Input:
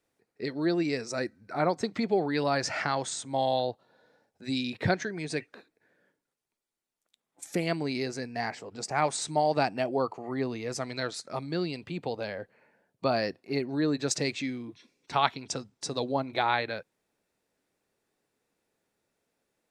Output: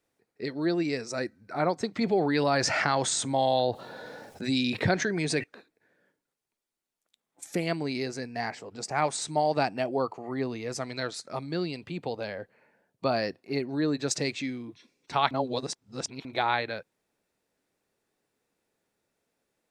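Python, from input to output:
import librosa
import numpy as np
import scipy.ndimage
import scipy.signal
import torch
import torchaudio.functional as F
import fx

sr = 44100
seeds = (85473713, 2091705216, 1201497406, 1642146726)

y = fx.env_flatten(x, sr, amount_pct=50, at=(2.01, 5.44))
y = fx.edit(y, sr, fx.reverse_span(start_s=15.31, length_s=0.94), tone=tone)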